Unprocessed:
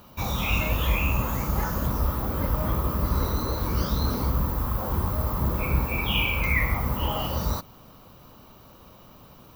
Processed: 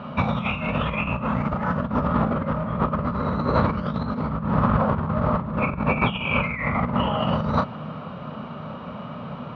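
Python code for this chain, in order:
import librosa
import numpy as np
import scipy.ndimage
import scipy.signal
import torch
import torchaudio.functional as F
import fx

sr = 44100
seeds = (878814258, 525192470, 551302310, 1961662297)

y = fx.cabinet(x, sr, low_hz=110.0, low_slope=12, high_hz=3000.0, hz=(160.0, 230.0, 330.0, 600.0, 1300.0), db=(10, 8, -8, 6, 6))
y = fx.doubler(y, sr, ms=33.0, db=-6.5)
y = fx.over_compress(y, sr, threshold_db=-29.0, ratio=-0.5)
y = y * 10.0 ** (7.0 / 20.0)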